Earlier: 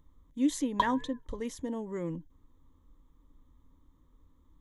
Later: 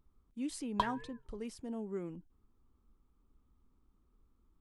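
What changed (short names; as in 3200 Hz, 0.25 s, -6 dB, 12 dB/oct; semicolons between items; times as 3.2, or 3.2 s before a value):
speech -7.0 dB; master: remove ripple EQ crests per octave 1.1, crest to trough 11 dB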